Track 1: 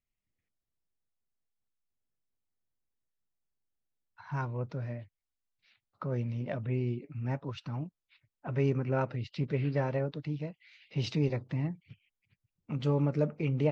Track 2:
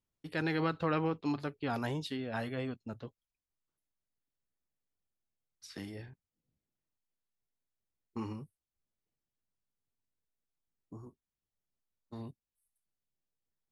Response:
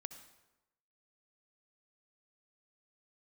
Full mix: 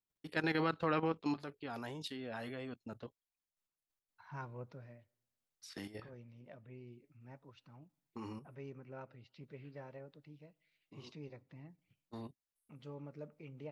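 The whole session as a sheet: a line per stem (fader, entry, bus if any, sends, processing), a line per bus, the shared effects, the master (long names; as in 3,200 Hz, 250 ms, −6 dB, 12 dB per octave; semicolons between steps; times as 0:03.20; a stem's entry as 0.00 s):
0:04.63 −9.5 dB → 0:05.12 −18.5 dB, 0.00 s, send −14.5 dB, downward expander −53 dBFS
+2.0 dB, 0.00 s, no send, output level in coarse steps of 11 dB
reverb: on, RT60 1.0 s, pre-delay 58 ms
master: low-shelf EQ 170 Hz −8 dB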